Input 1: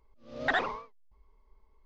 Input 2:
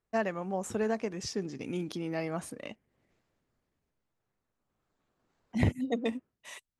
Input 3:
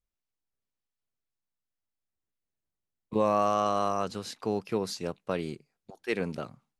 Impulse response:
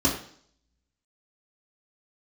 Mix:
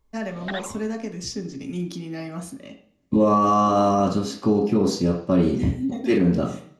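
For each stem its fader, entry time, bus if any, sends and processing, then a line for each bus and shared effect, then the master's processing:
−6.0 dB, 0.00 s, no send, parametric band 3,600 Hz +8.5 dB 0.74 octaves
−5.0 dB, 0.00 s, send −15.5 dB, high-shelf EQ 2,000 Hz +10.5 dB; automatic ducking −11 dB, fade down 0.75 s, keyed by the third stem
0.0 dB, 0.00 s, send −7.5 dB, no processing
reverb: on, RT60 0.55 s, pre-delay 3 ms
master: low-shelf EQ 410 Hz +4 dB; brickwall limiter −10 dBFS, peak gain reduction 6.5 dB

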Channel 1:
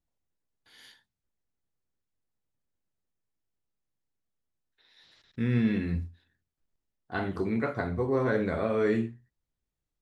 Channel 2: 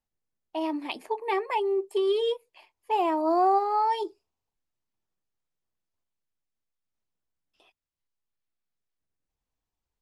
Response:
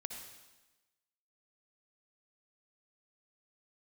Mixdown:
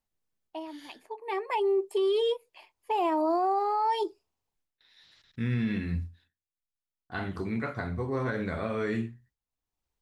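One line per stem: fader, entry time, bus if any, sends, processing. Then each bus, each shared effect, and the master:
+1.0 dB, 0.00 s, no send, noise gate with hold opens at −57 dBFS; parametric band 440 Hz −6.5 dB 2.1 octaves
+1.5 dB, 0.00 s, no send, automatic ducking −14 dB, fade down 0.20 s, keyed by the first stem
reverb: not used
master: brickwall limiter −20.5 dBFS, peak gain reduction 7.5 dB

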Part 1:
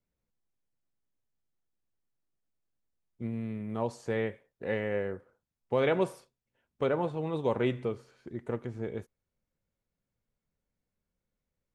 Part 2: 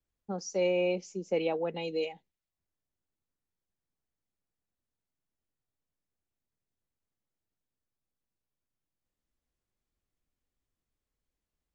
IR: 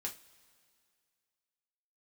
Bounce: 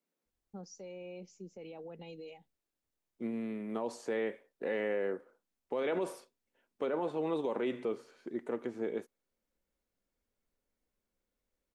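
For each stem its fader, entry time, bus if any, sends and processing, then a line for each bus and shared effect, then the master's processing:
+1.0 dB, 0.00 s, no send, high-pass filter 260 Hz 24 dB per octave
−12.0 dB, 0.25 s, no send, brickwall limiter −29 dBFS, peak gain reduction 10.5 dB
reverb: not used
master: low-shelf EQ 160 Hz +12 dB; brickwall limiter −25.5 dBFS, peak gain reduction 11 dB

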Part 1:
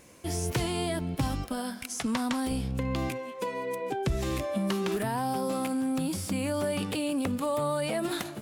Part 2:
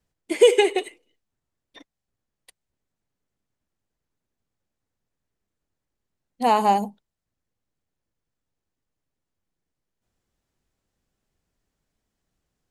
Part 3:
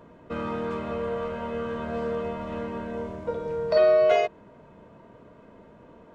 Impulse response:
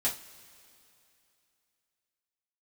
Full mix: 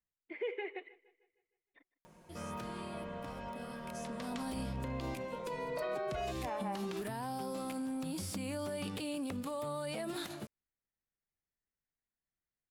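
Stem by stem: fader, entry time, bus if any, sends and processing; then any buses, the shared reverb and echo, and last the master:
0:04.05 −16 dB → 0:04.33 −4.5 dB, 2.05 s, no send, no echo send, downward compressor, threshold −31 dBFS, peak gain reduction 8.5 dB
−11.5 dB, 0.00 s, no send, echo send −23 dB, transistor ladder low-pass 2,300 Hz, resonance 55%
−11.5 dB, 2.05 s, no send, no echo send, parametric band 310 Hz −6.5 dB; comb filter 5.5 ms, depth 70%; upward compression, threshold −45 dBFS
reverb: not used
echo: repeating echo 155 ms, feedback 49%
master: parametric band 4,400 Hz +2.5 dB; brickwall limiter −29.5 dBFS, peak gain reduction 9 dB

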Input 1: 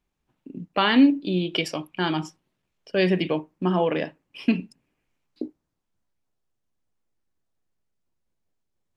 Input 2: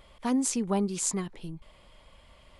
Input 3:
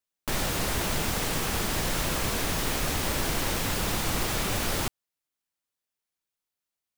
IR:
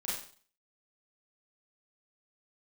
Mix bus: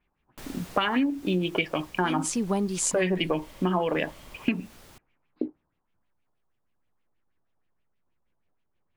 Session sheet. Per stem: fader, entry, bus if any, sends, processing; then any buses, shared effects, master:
+2.5 dB, 0.00 s, no send, auto-filter low-pass sine 6.3 Hz 920–3,000 Hz
−5.0 dB, 1.80 s, no send, automatic gain control gain up to 11 dB
−11.5 dB, 0.10 s, no send, automatic ducking −12 dB, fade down 1.65 s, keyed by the first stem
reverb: not used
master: downward compressor 12 to 1, threshold −21 dBFS, peak gain reduction 13 dB

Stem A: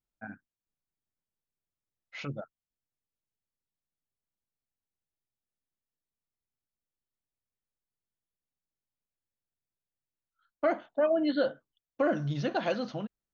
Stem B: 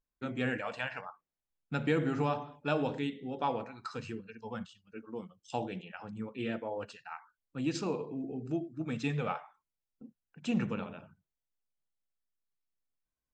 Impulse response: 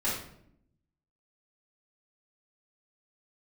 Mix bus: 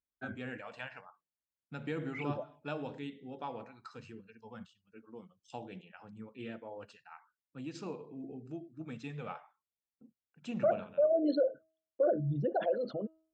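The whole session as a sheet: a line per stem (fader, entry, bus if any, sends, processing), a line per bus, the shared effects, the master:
−1.0 dB, 0.00 s, no send, spectral envelope exaggerated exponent 3; noise gate with hold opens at −54 dBFS; hum removal 319.2 Hz, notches 9
−5.0 dB, 0.00 s, no send, amplitude modulation by smooth noise, depth 55%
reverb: not used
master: high-pass filter 48 Hz; high-shelf EQ 7,300 Hz −4 dB

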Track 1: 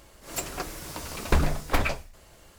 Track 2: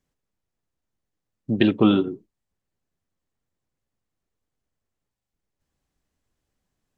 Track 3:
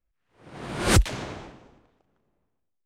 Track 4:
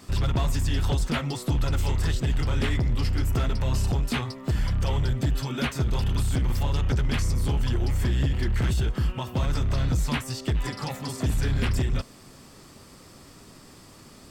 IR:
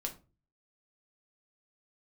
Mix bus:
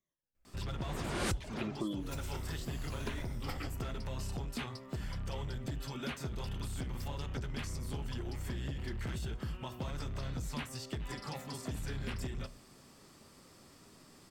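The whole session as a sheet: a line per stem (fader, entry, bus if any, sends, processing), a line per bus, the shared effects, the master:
−15.0 dB, 1.75 s, no send, rippled gain that drifts along the octave scale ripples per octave 1.5, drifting −0.98 Hz, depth 11 dB
−15.0 dB, 0.00 s, no send, rippled gain that drifts along the octave scale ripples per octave 1.2, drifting −1.7 Hz, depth 18 dB; gate on every frequency bin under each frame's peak −30 dB strong
−0.5 dB, 0.35 s, send −12 dB, reverb reduction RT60 0.56 s
−11.0 dB, 0.45 s, send −10 dB, low-shelf EQ 87 Hz −7 dB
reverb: on, RT60 0.30 s, pre-delay 5 ms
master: downward compressor 4 to 1, threshold −35 dBFS, peak gain reduction 18.5 dB

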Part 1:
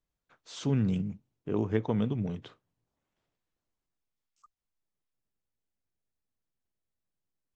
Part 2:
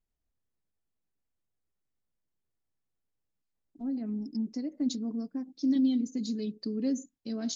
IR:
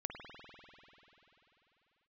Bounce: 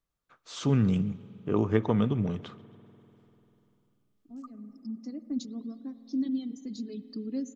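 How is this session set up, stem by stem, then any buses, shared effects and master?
−0.5 dB, 0.00 s, send −15.5 dB, echo send −23.5 dB, no processing
−11.5 dB, 0.50 s, send −7.5 dB, no echo send, reverb reduction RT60 1.3 s; low-shelf EQ 250 Hz +8.5 dB; automatic ducking −14 dB, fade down 0.25 s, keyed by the first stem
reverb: on, pre-delay 49 ms
echo: repeating echo 135 ms, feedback 53%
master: automatic gain control gain up to 3 dB; parametric band 1,200 Hz +9 dB 0.2 octaves

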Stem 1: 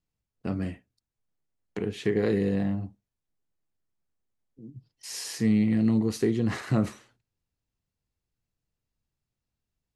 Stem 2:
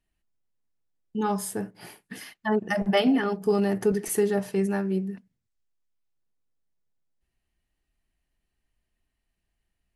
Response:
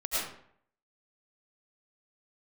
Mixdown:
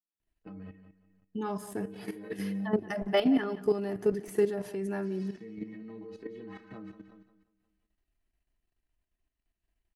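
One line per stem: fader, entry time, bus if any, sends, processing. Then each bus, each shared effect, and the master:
+1.0 dB, 0.00 s, no send, echo send −10.5 dB, three-way crossover with the lows and the highs turned down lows −18 dB, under 160 Hz, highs −23 dB, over 4,000 Hz; stiff-string resonator 93 Hz, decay 0.39 s, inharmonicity 0.03
−0.5 dB, 0.20 s, no send, echo send −19.5 dB, de-essing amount 70%; comb filter 3 ms, depth 31%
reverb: not used
echo: repeating echo 178 ms, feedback 42%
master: parametric band 8,500 Hz −4 dB 3 octaves; output level in coarse steps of 11 dB

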